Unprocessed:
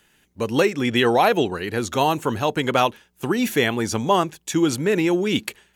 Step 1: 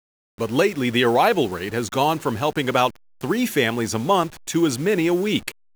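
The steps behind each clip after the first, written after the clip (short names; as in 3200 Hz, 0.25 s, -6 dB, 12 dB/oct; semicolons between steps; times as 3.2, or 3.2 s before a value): level-crossing sampler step -35.5 dBFS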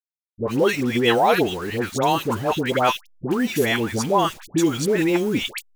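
dispersion highs, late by 0.104 s, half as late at 1100 Hz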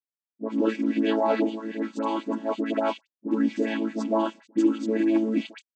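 chord vocoder major triad, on A3; gain -3.5 dB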